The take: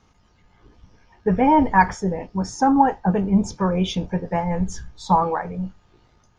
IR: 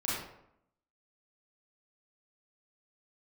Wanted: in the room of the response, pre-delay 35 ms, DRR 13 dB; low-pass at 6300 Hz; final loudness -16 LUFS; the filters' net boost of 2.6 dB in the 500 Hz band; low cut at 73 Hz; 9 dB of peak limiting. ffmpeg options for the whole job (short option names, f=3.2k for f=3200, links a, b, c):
-filter_complex "[0:a]highpass=73,lowpass=6.3k,equalizer=f=500:t=o:g=3,alimiter=limit=-10.5dB:level=0:latency=1,asplit=2[a][b];[1:a]atrim=start_sample=2205,adelay=35[c];[b][c]afir=irnorm=-1:irlink=0,volume=-19.5dB[d];[a][d]amix=inputs=2:normalize=0,volume=6dB"